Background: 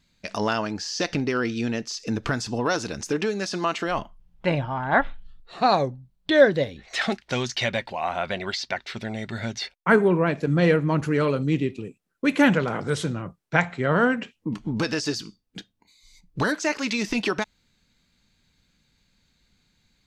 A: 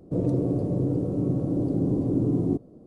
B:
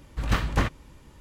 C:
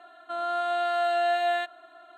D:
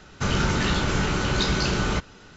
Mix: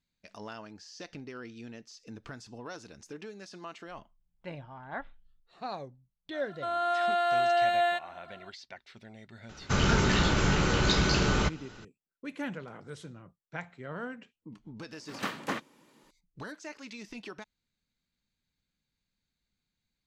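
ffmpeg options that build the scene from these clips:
ffmpeg -i bed.wav -i cue0.wav -i cue1.wav -i cue2.wav -i cue3.wav -filter_complex "[0:a]volume=-18.5dB[link_01];[2:a]highpass=frequency=200:width=0.5412,highpass=frequency=200:width=1.3066[link_02];[3:a]atrim=end=2.17,asetpts=PTS-STARTPTS,volume=-0.5dB,afade=type=in:duration=0.004:curve=hsin,afade=type=out:start_time=2.166:duration=0.004:curve=hsin,adelay=6330[link_03];[4:a]atrim=end=2.36,asetpts=PTS-STARTPTS,volume=-2dB,afade=type=in:duration=0.004:curve=hsin,afade=type=out:start_time=2.356:duration=0.004:curve=hsin,adelay=9490[link_04];[link_02]atrim=end=1.2,asetpts=PTS-STARTPTS,volume=-5.5dB,afade=type=in:duration=0.004:curve=hsin,afade=type=out:start_time=1.196:duration=0.004:curve=hsin,adelay=14910[link_05];[link_01][link_03][link_04][link_05]amix=inputs=4:normalize=0" out.wav

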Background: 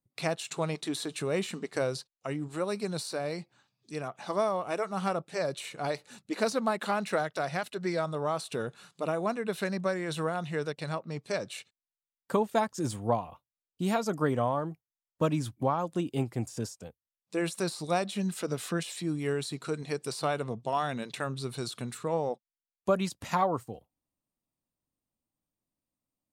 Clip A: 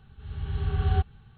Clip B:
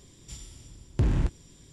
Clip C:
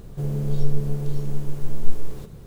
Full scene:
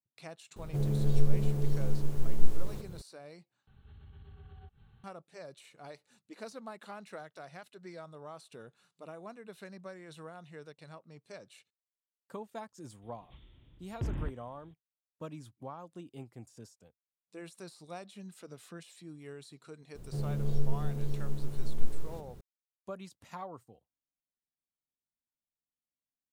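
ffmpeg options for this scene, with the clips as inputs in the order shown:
ffmpeg -i bed.wav -i cue0.wav -i cue1.wav -i cue2.wav -filter_complex "[3:a]asplit=2[link_01][link_02];[0:a]volume=-16dB[link_03];[1:a]acompressor=threshold=-42dB:ratio=6:attack=3.2:release=140:knee=1:detection=peak[link_04];[2:a]aresample=8000,aresample=44100[link_05];[link_03]asplit=2[link_06][link_07];[link_06]atrim=end=3.674[link_08];[link_04]atrim=end=1.37,asetpts=PTS-STARTPTS,volume=-8dB[link_09];[link_07]atrim=start=5.036[link_10];[link_01]atrim=end=2.46,asetpts=PTS-STARTPTS,volume=-4dB,afade=type=in:duration=0.004:curve=hsin,afade=type=out:start_time=2.456:duration=0.004:curve=hsin,adelay=560[link_11];[link_05]atrim=end=1.72,asetpts=PTS-STARTPTS,volume=-11dB,afade=type=in:duration=0.004:curve=hsin,afade=type=out:start_time=1.716:duration=0.004:curve=hsin,adelay=13020[link_12];[link_02]atrim=end=2.46,asetpts=PTS-STARTPTS,volume=-8dB,afade=type=in:duration=0.004:curve=hsin,afade=type=out:start_time=2.456:duration=0.004:curve=hsin,adelay=19950[link_13];[link_08][link_09]acrossfade=duration=0.004:curve1=hsin:curve2=hsin[link_14];[link_14][link_10]acrossfade=duration=0.004:curve1=hsin:curve2=hsin[link_15];[link_15][link_11][link_12][link_13]amix=inputs=4:normalize=0" out.wav

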